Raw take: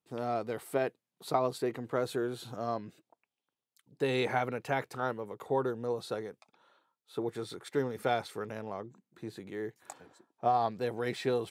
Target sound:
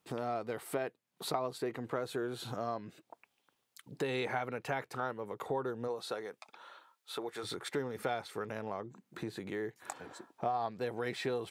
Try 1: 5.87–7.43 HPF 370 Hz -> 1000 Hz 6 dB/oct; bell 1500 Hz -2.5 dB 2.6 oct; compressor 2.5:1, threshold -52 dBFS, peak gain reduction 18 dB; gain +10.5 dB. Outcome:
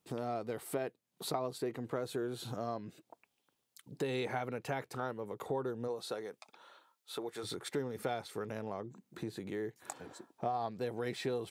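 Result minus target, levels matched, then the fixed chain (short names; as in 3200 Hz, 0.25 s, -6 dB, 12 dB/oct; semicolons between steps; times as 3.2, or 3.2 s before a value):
2000 Hz band -3.0 dB
5.87–7.43 HPF 370 Hz -> 1000 Hz 6 dB/oct; bell 1500 Hz +3.5 dB 2.6 oct; compressor 2.5:1, threshold -52 dBFS, peak gain reduction 20 dB; gain +10.5 dB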